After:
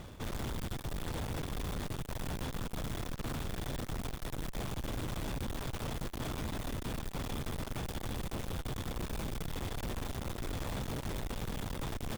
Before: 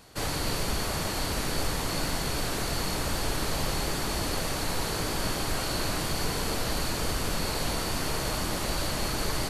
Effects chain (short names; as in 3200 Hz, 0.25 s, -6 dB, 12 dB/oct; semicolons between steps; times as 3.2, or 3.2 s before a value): on a send: feedback echo 0.504 s, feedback 39%, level -5 dB; on the sum: varispeed -22%; high shelf 3100 Hz -10 dB; reverse; compressor 6:1, threshold -37 dBFS, peak gain reduction 14 dB; reverse; tone controls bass +8 dB, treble -1 dB; modulation noise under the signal 19 dB; tube stage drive 42 dB, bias 0.6; gain +7.5 dB